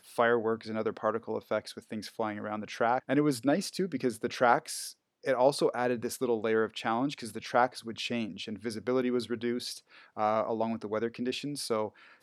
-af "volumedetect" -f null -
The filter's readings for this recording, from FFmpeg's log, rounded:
mean_volume: -31.1 dB
max_volume: -9.3 dB